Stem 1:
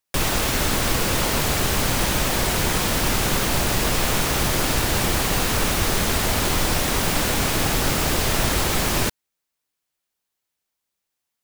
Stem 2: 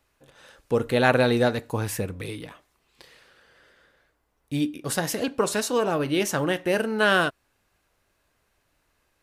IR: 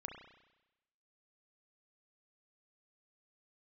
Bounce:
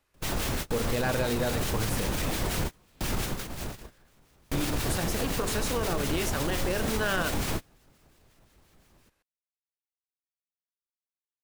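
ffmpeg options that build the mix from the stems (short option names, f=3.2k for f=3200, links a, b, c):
-filter_complex "[0:a]lowshelf=f=440:g=6,alimiter=limit=-10dB:level=0:latency=1:release=27,acrossover=split=1500[a][b];[a]aeval=exprs='val(0)*(1-0.5/2+0.5/2*cos(2*PI*5.7*n/s))':c=same[c];[b]aeval=exprs='val(0)*(1-0.5/2-0.5/2*cos(2*PI*5.7*n/s))':c=same[d];[c][d]amix=inputs=2:normalize=0,volume=-7dB[e];[1:a]bandreject=f=49.68:t=h:w=4,bandreject=f=99.36:t=h:w=4,bandreject=f=149.04:t=h:w=4,bandreject=f=198.72:t=h:w=4,bandreject=f=248.4:t=h:w=4,bandreject=f=298.08:t=h:w=4,bandreject=f=347.76:t=h:w=4,bandreject=f=397.44:t=h:w=4,bandreject=f=447.12:t=h:w=4,bandreject=f=496.8:t=h:w=4,bandreject=f=546.48:t=h:w=4,bandreject=f=596.16:t=h:w=4,bandreject=f=645.84:t=h:w=4,bandreject=f=695.52:t=h:w=4,bandreject=f=745.2:t=h:w=4,bandreject=f=794.88:t=h:w=4,bandreject=f=844.56:t=h:w=4,bandreject=f=894.24:t=h:w=4,asoftclip=type=hard:threshold=-14.5dB,volume=-4dB,asplit=2[f][g];[g]apad=whole_len=504354[h];[e][h]sidechaingate=range=-33dB:threshold=-60dB:ratio=16:detection=peak[i];[i][f]amix=inputs=2:normalize=0,alimiter=limit=-19dB:level=0:latency=1:release=47"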